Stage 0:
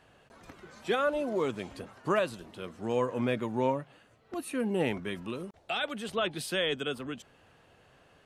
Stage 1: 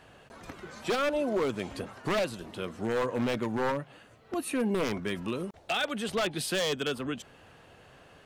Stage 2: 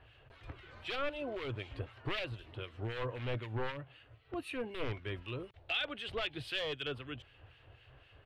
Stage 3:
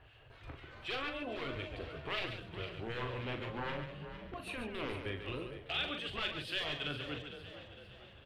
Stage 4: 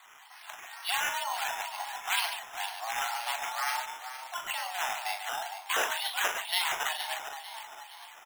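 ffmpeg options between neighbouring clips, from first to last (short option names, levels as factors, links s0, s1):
-filter_complex "[0:a]asplit=2[s0][s1];[s1]acompressor=threshold=0.0141:ratio=6,volume=1[s2];[s0][s2]amix=inputs=2:normalize=0,aeval=exprs='0.0794*(abs(mod(val(0)/0.0794+3,4)-2)-1)':c=same"
-filter_complex "[0:a]firequalizer=gain_entry='entry(120,0);entry(180,-25);entry(300,-12);entry(840,-13);entry(2000,-8);entry(2900,-4);entry(6300,-25)':delay=0.05:min_phase=1,acrossover=split=1600[s0][s1];[s0]aeval=exprs='val(0)*(1-0.7/2+0.7/2*cos(2*PI*3.9*n/s))':c=same[s2];[s1]aeval=exprs='val(0)*(1-0.7/2-0.7/2*cos(2*PI*3.9*n/s))':c=same[s3];[s2][s3]amix=inputs=2:normalize=0,volume=1.88"
-filter_complex "[0:a]asplit=2[s0][s1];[s1]asplit=5[s2][s3][s4][s5][s6];[s2]adelay=456,afreqshift=36,volume=0.251[s7];[s3]adelay=912,afreqshift=72,volume=0.12[s8];[s4]adelay=1368,afreqshift=108,volume=0.0575[s9];[s5]adelay=1824,afreqshift=144,volume=0.0279[s10];[s6]adelay=2280,afreqshift=180,volume=0.0133[s11];[s7][s8][s9][s10][s11]amix=inputs=5:normalize=0[s12];[s0][s12]amix=inputs=2:normalize=0,afftfilt=real='re*lt(hypot(re,im),0.1)':imag='im*lt(hypot(re,im),0.1)':win_size=1024:overlap=0.75,asplit=2[s13][s14];[s14]aecho=0:1:40.82|139.9:0.447|0.398[s15];[s13][s15]amix=inputs=2:normalize=0"
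-filter_complex "[0:a]asplit=2[s0][s1];[s1]adelay=37,volume=0.224[s2];[s0][s2]amix=inputs=2:normalize=0,highpass=f=400:t=q:w=0.5412,highpass=f=400:t=q:w=1.307,lowpass=f=3400:t=q:w=0.5176,lowpass=f=3400:t=q:w=0.7071,lowpass=f=3400:t=q:w=1.932,afreqshift=340,acrusher=samples=8:mix=1:aa=0.000001:lfo=1:lforange=4.8:lforate=2.1,volume=2.82"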